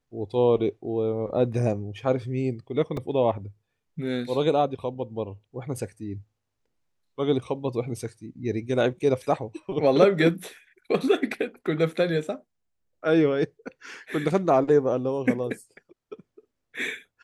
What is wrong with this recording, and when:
2.97 s: dropout 2.8 ms

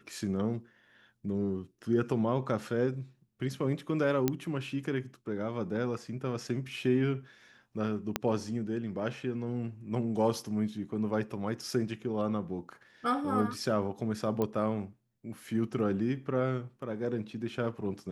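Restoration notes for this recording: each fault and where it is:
4.28 s: pop -13 dBFS
8.16 s: pop -12 dBFS
14.42 s: pop -19 dBFS

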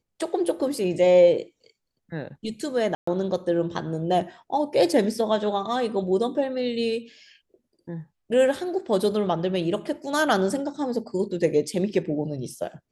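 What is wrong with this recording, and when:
2.95–3.07 s: dropout 124 ms

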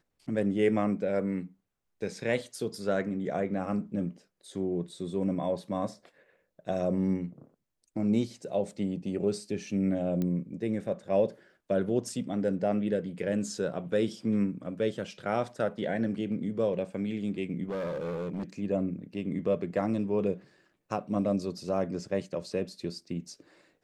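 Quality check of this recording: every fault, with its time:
10.22 s: pop -20 dBFS
17.69–18.43 s: clipped -30.5 dBFS

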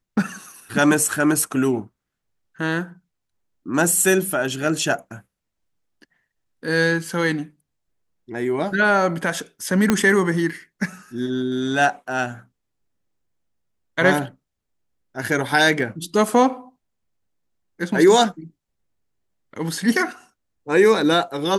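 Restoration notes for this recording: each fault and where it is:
9.90 s: pop -3 dBFS

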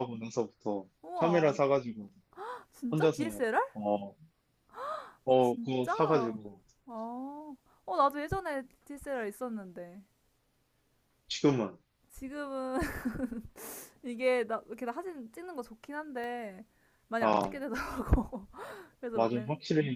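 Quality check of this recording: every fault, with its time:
16.24 s: pop -31 dBFS

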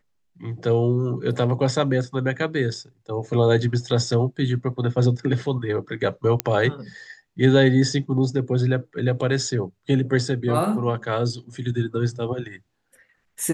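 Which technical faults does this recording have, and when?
6.40 s: pop -4 dBFS

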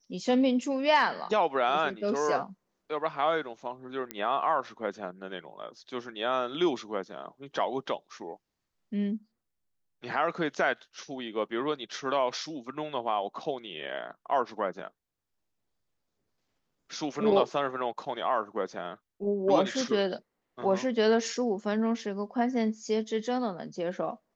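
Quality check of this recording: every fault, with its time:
4.11 s: pop -17 dBFS

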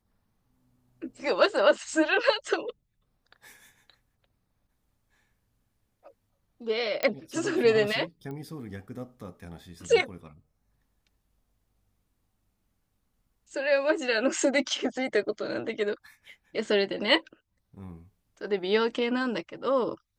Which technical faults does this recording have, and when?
7.03 s: pop -13 dBFS
8.31 s: pop -29 dBFS

